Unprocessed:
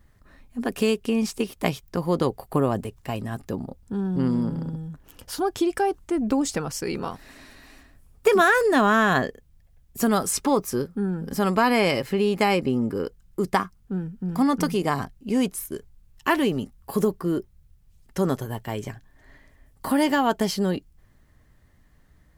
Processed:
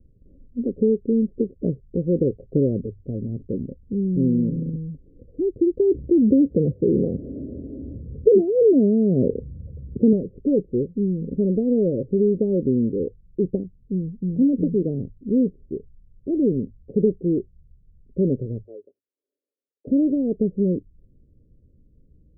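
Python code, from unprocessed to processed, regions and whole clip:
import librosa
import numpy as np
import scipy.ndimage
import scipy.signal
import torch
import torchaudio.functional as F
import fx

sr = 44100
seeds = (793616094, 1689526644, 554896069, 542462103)

y = fx.chain(x, sr, fx.highpass(hz=62.0, slope=24),
    fx.env_flatten(amount_pct=50), at=(5.79, 10.13))
y = fx.chain(y, sr, fx.highpass(hz=420.0, slope=24),
    fx.upward_expand(threshold_db=-46.0, expansion=2.5), at=(18.64, 19.87))
y = scipy.signal.sosfilt(scipy.signal.butter(12, 530.0, 'lowpass', fs=sr, output='sos'), y)
y = fx.hum_notches(y, sr, base_hz=50, count=2)
y = y * 10.0 ** (3.5 / 20.0)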